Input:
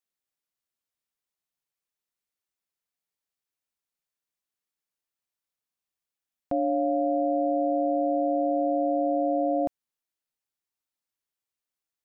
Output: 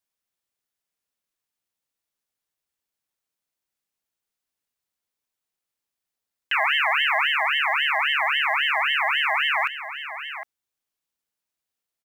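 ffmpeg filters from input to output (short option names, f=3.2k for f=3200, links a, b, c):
-filter_complex "[0:a]asplit=2[a][b];[b]adelay=758,volume=-12dB,highshelf=f=4k:g=-17.1[c];[a][c]amix=inputs=2:normalize=0,acrusher=bits=9:mode=log:mix=0:aa=0.000001,aeval=exprs='val(0)*sin(2*PI*1900*n/s+1900*0.3/3.7*sin(2*PI*3.7*n/s))':c=same,volume=6.5dB"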